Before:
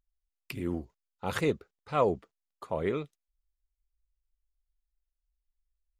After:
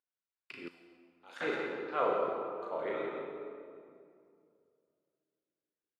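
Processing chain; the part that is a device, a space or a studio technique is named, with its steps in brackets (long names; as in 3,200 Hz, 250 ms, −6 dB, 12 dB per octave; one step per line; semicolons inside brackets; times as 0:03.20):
station announcement (band-pass filter 400–4,000 Hz; parametric band 1,500 Hz +7 dB 0.3 octaves; loudspeakers that aren't time-aligned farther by 12 metres −3 dB, 58 metres −7 dB; convolution reverb RT60 2.3 s, pre-delay 35 ms, DRR −1 dB)
0:00.68–0:01.41: first-order pre-emphasis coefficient 0.9
level −7.5 dB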